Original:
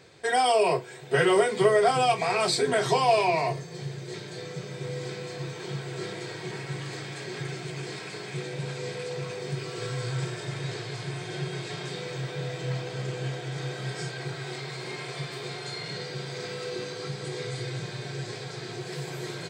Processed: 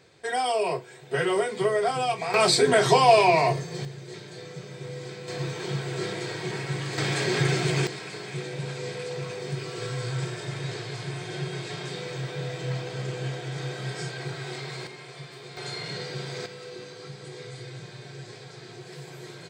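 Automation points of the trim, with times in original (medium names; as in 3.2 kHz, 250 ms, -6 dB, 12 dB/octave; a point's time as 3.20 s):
-3.5 dB
from 2.34 s +5 dB
from 3.85 s -3 dB
from 5.28 s +4 dB
from 6.98 s +11 dB
from 7.87 s +0.5 dB
from 14.87 s -7 dB
from 15.57 s +1 dB
from 16.46 s -6.5 dB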